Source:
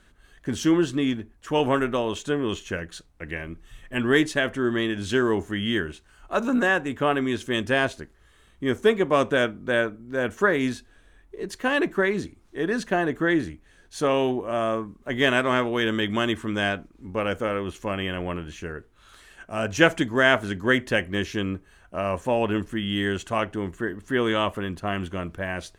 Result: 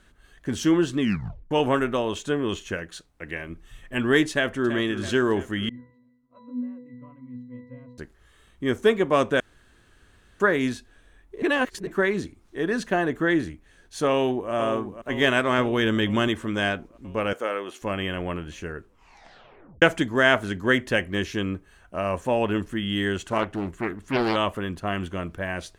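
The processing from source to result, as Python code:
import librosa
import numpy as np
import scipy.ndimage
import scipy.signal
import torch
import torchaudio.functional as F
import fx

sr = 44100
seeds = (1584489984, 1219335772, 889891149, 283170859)

y = fx.low_shelf(x, sr, hz=140.0, db=-7.0, at=(2.74, 3.5))
y = fx.echo_throw(y, sr, start_s=4.31, length_s=0.45, ms=330, feedback_pct=65, wet_db=-12.0)
y = fx.octave_resonator(y, sr, note='B', decay_s=0.73, at=(5.69, 7.98))
y = fx.echo_throw(y, sr, start_s=14.1, length_s=0.42, ms=490, feedback_pct=65, wet_db=-10.0)
y = fx.low_shelf(y, sr, hz=220.0, db=6.5, at=(15.58, 16.28))
y = fx.highpass(y, sr, hz=390.0, slope=12, at=(17.33, 17.82))
y = fx.doppler_dist(y, sr, depth_ms=0.57, at=(23.27, 24.36))
y = fx.edit(y, sr, fx.tape_stop(start_s=1.0, length_s=0.51),
    fx.room_tone_fill(start_s=9.4, length_s=1.0),
    fx.reverse_span(start_s=11.42, length_s=0.45),
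    fx.tape_stop(start_s=18.76, length_s=1.06), tone=tone)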